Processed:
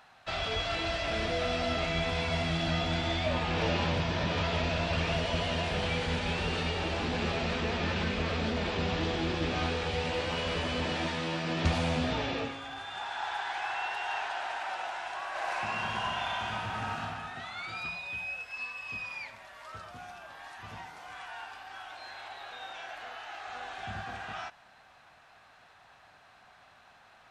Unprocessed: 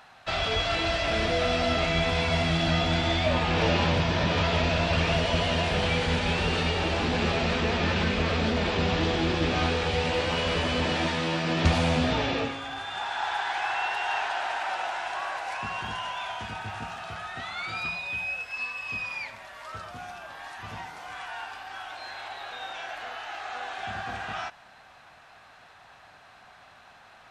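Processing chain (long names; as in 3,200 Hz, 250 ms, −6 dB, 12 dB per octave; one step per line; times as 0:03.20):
0:15.29–0:17.00: thrown reverb, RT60 1.8 s, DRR −5.5 dB
0:23.47–0:24.05: bass and treble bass +7 dB, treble +1 dB
level −5.5 dB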